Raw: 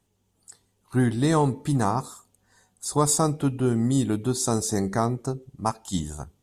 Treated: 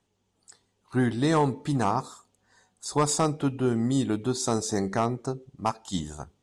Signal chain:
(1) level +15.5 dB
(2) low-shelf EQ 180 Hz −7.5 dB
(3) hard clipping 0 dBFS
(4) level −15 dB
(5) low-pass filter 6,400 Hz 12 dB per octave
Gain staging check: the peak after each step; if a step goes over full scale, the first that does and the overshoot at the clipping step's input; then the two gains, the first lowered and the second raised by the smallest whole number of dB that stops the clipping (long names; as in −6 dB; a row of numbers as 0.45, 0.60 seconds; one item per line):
+6.5, +6.5, 0.0, −15.0, −14.5 dBFS
step 1, 6.5 dB
step 1 +8.5 dB, step 4 −8 dB